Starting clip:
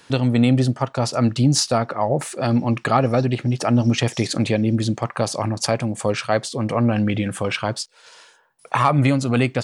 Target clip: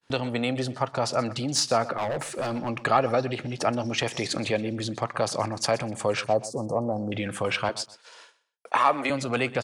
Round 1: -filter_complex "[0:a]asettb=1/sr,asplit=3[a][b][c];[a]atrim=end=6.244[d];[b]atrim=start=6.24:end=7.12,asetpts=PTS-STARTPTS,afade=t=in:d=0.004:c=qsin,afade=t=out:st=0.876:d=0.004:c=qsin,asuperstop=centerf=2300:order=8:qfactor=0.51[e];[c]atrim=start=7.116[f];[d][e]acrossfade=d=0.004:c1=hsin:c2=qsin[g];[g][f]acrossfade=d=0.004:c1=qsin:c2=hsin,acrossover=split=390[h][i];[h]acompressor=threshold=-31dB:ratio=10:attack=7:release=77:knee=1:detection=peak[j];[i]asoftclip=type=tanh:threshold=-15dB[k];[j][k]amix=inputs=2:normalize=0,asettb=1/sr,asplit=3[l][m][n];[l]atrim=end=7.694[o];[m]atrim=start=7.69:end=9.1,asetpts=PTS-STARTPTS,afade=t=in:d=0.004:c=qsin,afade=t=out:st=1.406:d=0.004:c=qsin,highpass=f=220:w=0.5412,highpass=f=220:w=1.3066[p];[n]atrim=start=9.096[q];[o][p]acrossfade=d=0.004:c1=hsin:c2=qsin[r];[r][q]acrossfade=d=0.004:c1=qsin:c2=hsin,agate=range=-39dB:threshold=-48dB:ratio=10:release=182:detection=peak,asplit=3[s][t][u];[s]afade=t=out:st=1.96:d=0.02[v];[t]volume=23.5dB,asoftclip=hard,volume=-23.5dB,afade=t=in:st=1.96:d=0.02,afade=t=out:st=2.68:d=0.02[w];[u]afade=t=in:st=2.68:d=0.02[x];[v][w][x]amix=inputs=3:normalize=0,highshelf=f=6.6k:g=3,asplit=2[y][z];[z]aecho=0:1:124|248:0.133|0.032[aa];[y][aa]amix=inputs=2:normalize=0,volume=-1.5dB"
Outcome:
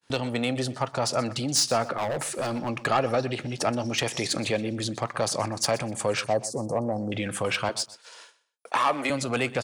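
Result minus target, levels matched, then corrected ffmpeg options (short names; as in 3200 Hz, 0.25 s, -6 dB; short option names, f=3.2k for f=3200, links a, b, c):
soft clip: distortion +10 dB; 8000 Hz band +4.0 dB
-filter_complex "[0:a]asettb=1/sr,asplit=3[a][b][c];[a]atrim=end=6.244[d];[b]atrim=start=6.24:end=7.12,asetpts=PTS-STARTPTS,afade=t=in:d=0.004:c=qsin,afade=t=out:st=0.876:d=0.004:c=qsin,asuperstop=centerf=2300:order=8:qfactor=0.51[e];[c]atrim=start=7.116[f];[d][e]acrossfade=d=0.004:c1=hsin:c2=qsin[g];[g][f]acrossfade=d=0.004:c1=qsin:c2=hsin,acrossover=split=390[h][i];[h]acompressor=threshold=-31dB:ratio=10:attack=7:release=77:knee=1:detection=peak[j];[i]asoftclip=type=tanh:threshold=-7dB[k];[j][k]amix=inputs=2:normalize=0,asettb=1/sr,asplit=3[l][m][n];[l]atrim=end=7.694[o];[m]atrim=start=7.69:end=9.1,asetpts=PTS-STARTPTS,afade=t=in:d=0.004:c=qsin,afade=t=out:st=1.406:d=0.004:c=qsin,highpass=f=220:w=0.5412,highpass=f=220:w=1.3066[p];[n]atrim=start=9.096[q];[o][p]acrossfade=d=0.004:c1=hsin:c2=qsin[r];[r][q]acrossfade=d=0.004:c1=qsin:c2=hsin,agate=range=-39dB:threshold=-48dB:ratio=10:release=182:detection=peak,asplit=3[s][t][u];[s]afade=t=out:st=1.96:d=0.02[v];[t]volume=23.5dB,asoftclip=hard,volume=-23.5dB,afade=t=in:st=1.96:d=0.02,afade=t=out:st=2.68:d=0.02[w];[u]afade=t=in:st=2.68:d=0.02[x];[v][w][x]amix=inputs=3:normalize=0,highshelf=f=6.6k:g=-6,asplit=2[y][z];[z]aecho=0:1:124|248:0.133|0.032[aa];[y][aa]amix=inputs=2:normalize=0,volume=-1.5dB"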